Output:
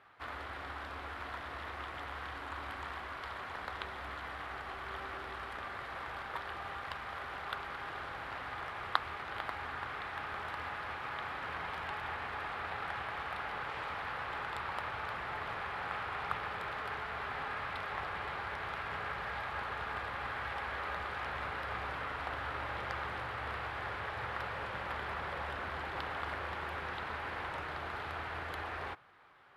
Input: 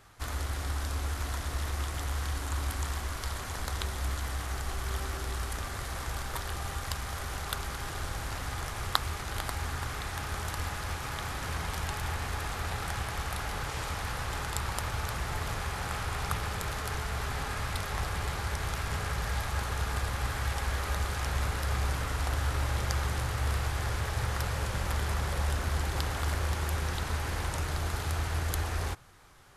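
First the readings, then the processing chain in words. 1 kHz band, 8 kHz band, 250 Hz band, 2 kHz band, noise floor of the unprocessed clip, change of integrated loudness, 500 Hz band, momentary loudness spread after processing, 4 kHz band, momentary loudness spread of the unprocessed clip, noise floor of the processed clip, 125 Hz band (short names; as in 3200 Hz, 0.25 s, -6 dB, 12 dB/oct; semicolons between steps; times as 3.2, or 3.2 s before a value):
-1.5 dB, under -25 dB, -9.0 dB, -1.5 dB, -38 dBFS, -6.0 dB, -4.0 dB, 4 LU, -8.5 dB, 5 LU, -44 dBFS, -17.5 dB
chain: HPF 1000 Hz 6 dB/oct; air absorption 480 m; gain +4 dB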